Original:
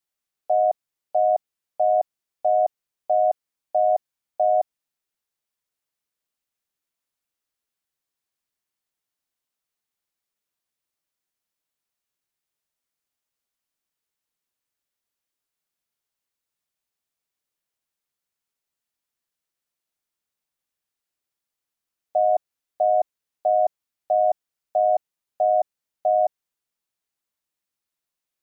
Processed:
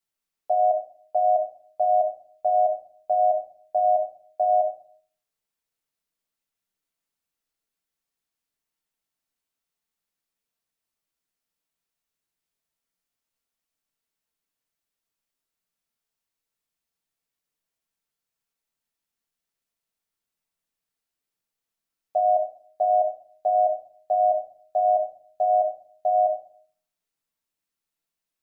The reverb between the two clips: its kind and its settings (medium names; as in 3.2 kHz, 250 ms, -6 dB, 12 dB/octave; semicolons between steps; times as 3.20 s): simulated room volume 490 m³, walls furnished, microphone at 1.6 m; trim -2.5 dB